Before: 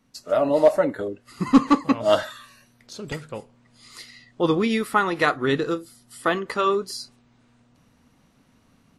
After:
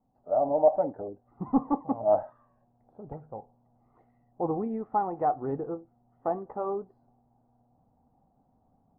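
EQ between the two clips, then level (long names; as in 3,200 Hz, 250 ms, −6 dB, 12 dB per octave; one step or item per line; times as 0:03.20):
transistor ladder low-pass 820 Hz, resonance 80%
high-frequency loss of the air 130 metres
low-shelf EQ 170 Hz +6.5 dB
0.0 dB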